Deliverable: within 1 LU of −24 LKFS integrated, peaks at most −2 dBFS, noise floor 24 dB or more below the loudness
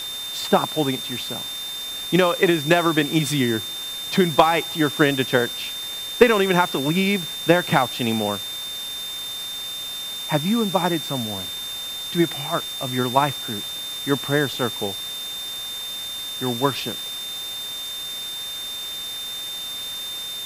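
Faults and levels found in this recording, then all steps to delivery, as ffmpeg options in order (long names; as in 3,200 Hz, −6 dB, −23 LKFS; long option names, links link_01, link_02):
interfering tone 3,600 Hz; level of the tone −29 dBFS; background noise floor −31 dBFS; target noise floor −47 dBFS; integrated loudness −22.5 LKFS; sample peak −1.5 dBFS; target loudness −24.0 LKFS
→ -af "bandreject=frequency=3600:width=30"
-af "afftdn=noise_reduction=16:noise_floor=-31"
-af "volume=-1.5dB"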